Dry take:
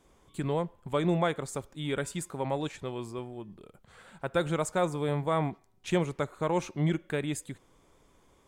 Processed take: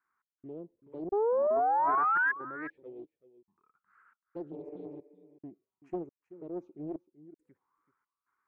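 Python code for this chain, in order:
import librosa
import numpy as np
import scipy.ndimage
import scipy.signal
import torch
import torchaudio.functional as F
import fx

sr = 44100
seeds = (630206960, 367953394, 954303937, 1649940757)

y = fx.spec_repair(x, sr, seeds[0], start_s=4.55, length_s=0.49, low_hz=290.0, high_hz=2600.0, source='after')
y = fx.auto_wah(y, sr, base_hz=330.0, top_hz=1500.0, q=4.2, full_db=-30.5, direction='down')
y = fx.step_gate(y, sr, bpm=69, pattern='x.xxx..xx', floor_db=-60.0, edge_ms=4.5)
y = fx.env_phaser(y, sr, low_hz=580.0, high_hz=3600.0, full_db=-29.5)
y = fx.spec_paint(y, sr, seeds[1], shape='rise', start_s=1.12, length_s=1.2, low_hz=390.0, high_hz=1700.0, level_db=-23.0)
y = y + 10.0 ** (-15.5 / 20.0) * np.pad(y, (int(382 * sr / 1000.0), 0))[:len(y)]
y = fx.doppler_dist(y, sr, depth_ms=0.41)
y = y * librosa.db_to_amplitude(-3.5)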